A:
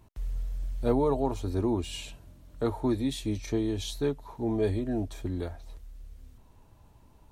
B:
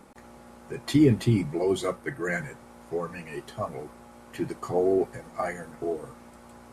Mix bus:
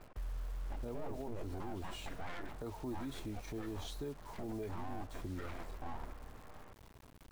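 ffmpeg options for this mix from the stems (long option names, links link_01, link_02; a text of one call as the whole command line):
ffmpeg -i stem1.wav -i stem2.wav -filter_complex "[0:a]highshelf=frequency=2500:gain=-7,acompressor=threshold=-37dB:ratio=2.5,acrusher=bits=8:mix=0:aa=0.000001,volume=-3.5dB,asplit=2[link_01][link_02];[1:a]lowpass=1300,aeval=exprs='abs(val(0))':channel_layout=same,volume=-3.5dB[link_03];[link_02]apad=whole_len=296675[link_04];[link_03][link_04]sidechaincompress=threshold=-43dB:ratio=8:attack=5.6:release=196[link_05];[link_01][link_05]amix=inputs=2:normalize=0,alimiter=level_in=9.5dB:limit=-24dB:level=0:latency=1:release=38,volume=-9.5dB" out.wav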